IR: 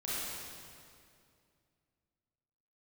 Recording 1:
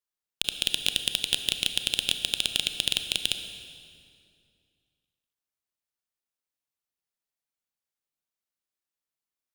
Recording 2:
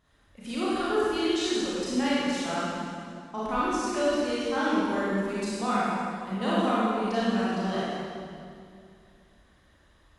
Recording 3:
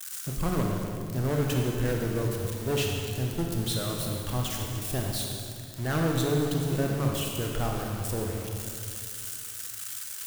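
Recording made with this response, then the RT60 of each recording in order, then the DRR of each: 2; 2.4, 2.4, 2.4 s; 7.5, -9.5, 0.0 dB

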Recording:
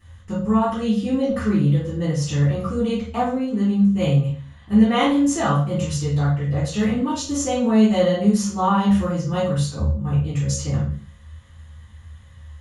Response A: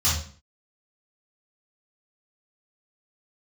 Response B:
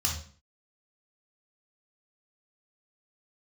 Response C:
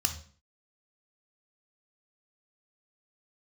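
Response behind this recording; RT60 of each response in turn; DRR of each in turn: A; 0.45, 0.45, 0.45 s; -10.0, -1.0, 6.0 dB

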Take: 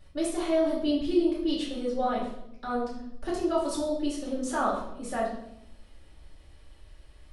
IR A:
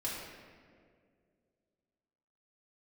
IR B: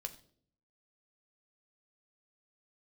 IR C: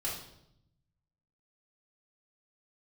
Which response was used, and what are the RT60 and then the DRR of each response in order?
C; 2.1, 0.55, 0.75 s; -7.0, 6.5, -6.0 dB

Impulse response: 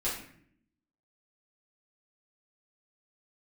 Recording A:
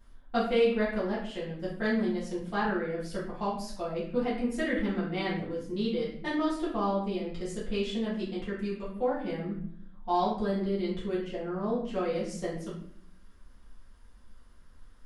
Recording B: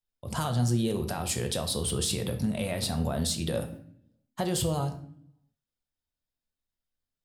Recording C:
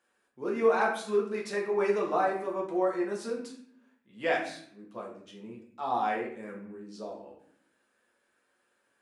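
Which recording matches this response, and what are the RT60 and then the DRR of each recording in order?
A; 0.65, 0.65, 0.65 s; -9.5, 5.0, -2.0 dB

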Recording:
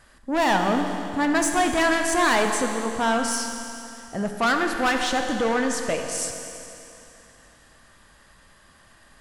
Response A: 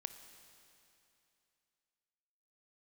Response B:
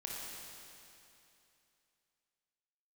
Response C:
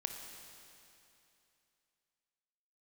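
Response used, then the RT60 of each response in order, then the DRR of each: C; 2.8, 2.8, 2.8 s; 9.0, -4.0, 3.5 dB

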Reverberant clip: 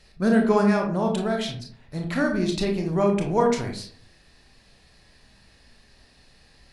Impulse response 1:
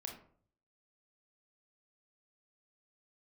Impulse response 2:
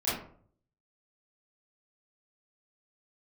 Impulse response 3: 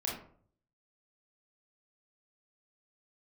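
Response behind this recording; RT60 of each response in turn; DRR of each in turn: 1; 0.55, 0.55, 0.55 s; 1.5, -12.0, -3.5 dB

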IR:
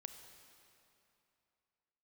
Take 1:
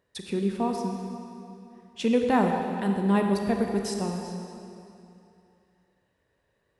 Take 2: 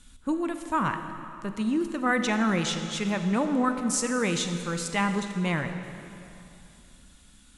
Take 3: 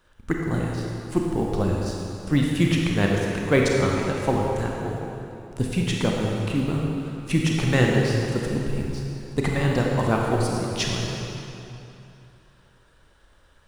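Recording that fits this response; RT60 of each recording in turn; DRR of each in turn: 2; 2.8, 2.8, 2.8 s; 2.5, 7.0, -1.5 dB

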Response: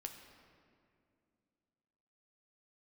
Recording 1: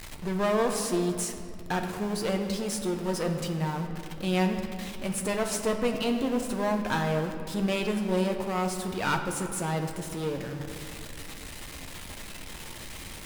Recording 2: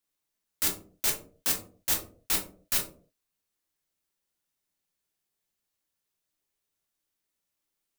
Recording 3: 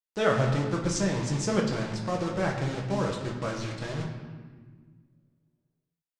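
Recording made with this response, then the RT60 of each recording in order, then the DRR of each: 1; 2.4, 0.45, 1.5 s; 3.5, 0.5, -1.0 dB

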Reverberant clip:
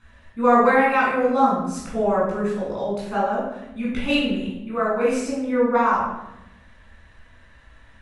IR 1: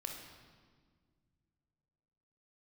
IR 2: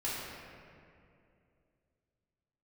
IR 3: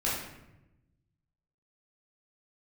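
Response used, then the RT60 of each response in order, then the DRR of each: 3; 1.8, 2.5, 0.95 s; 1.5, -9.5, -7.5 dB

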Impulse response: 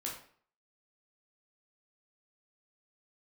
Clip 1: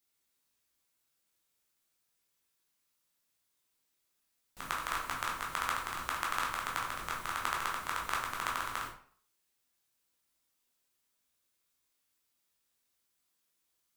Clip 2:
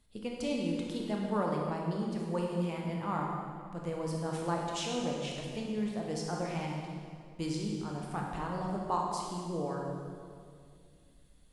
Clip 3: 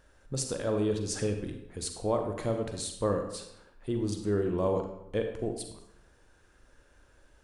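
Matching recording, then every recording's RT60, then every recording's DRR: 1; 0.50, 2.2, 0.80 s; -3.0, -1.5, 4.5 dB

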